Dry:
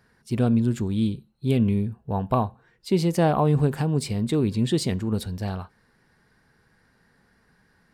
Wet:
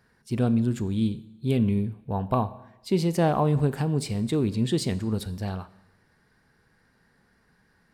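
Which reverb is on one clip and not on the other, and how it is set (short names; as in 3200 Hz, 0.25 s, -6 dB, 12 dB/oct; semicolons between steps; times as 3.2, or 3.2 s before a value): Schroeder reverb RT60 0.94 s, combs from 28 ms, DRR 16 dB; gain -2 dB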